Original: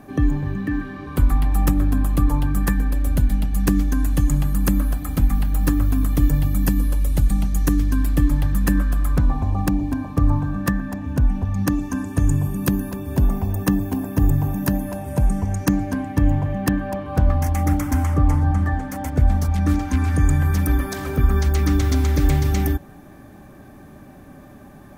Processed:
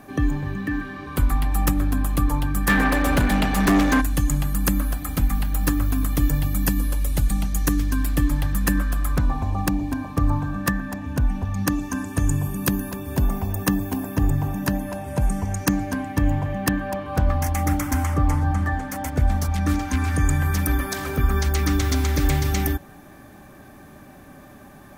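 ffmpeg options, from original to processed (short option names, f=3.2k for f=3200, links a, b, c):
-filter_complex "[0:a]asplit=3[a][b][c];[a]afade=t=out:st=2.68:d=0.02[d];[b]asplit=2[e][f];[f]highpass=f=720:p=1,volume=29dB,asoftclip=type=tanh:threshold=-6.5dB[g];[e][g]amix=inputs=2:normalize=0,lowpass=f=1.4k:p=1,volume=-6dB,afade=t=in:st=2.68:d=0.02,afade=t=out:st=4:d=0.02[h];[c]afade=t=in:st=4:d=0.02[i];[d][h][i]amix=inputs=3:normalize=0,asettb=1/sr,asplit=3[j][k][l];[j]atrim=end=14.164[m];[k]atrim=start=14.16:end=15.22,asetpts=PTS-STARTPTS,afade=t=in:d=0.004:c=qsin,afade=t=out:st=1.056:d=0.004:c=qsin,highshelf=f=9.7k:g=-10.5[n];[l]atrim=start=15.216[o];[m][n]acrossfade=d=0.004:c1=hsin:c2=qsin[p];[p][o]acrossfade=d=0.004:c1=qsin:c2=hsin,tiltshelf=f=710:g=-3.5"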